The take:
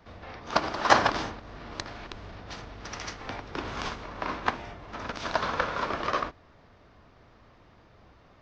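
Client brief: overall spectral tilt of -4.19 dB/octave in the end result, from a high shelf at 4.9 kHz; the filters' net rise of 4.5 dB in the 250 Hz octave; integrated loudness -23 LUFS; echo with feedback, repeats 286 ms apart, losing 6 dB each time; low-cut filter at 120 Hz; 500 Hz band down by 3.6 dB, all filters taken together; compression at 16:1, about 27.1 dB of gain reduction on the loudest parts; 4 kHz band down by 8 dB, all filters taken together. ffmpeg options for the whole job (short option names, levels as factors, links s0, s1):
-af "highpass=120,equalizer=f=250:t=o:g=8,equalizer=f=500:t=o:g=-6.5,equalizer=f=4000:t=o:g=-7,highshelf=f=4900:g=-7.5,acompressor=threshold=0.00794:ratio=16,aecho=1:1:286|572|858|1144|1430|1716:0.501|0.251|0.125|0.0626|0.0313|0.0157,volume=15"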